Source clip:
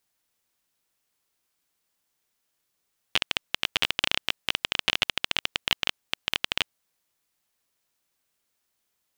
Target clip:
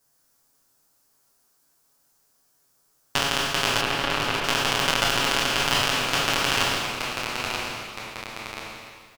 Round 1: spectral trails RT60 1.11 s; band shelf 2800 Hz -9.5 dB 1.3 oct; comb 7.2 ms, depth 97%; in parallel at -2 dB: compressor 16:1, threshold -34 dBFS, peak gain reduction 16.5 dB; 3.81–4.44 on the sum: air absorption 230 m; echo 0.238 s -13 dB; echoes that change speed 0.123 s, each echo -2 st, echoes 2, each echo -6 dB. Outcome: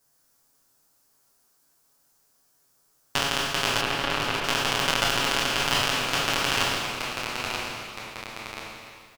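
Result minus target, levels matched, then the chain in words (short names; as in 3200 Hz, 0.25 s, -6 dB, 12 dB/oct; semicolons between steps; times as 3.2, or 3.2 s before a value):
compressor: peak gain reduction +7.5 dB
spectral trails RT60 1.11 s; band shelf 2800 Hz -9.5 dB 1.3 oct; comb 7.2 ms, depth 97%; in parallel at -2 dB: compressor 16:1, threshold -26 dBFS, peak gain reduction 9 dB; 3.81–4.44 on the sum: air absorption 230 m; echo 0.238 s -13 dB; echoes that change speed 0.123 s, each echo -2 st, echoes 2, each echo -6 dB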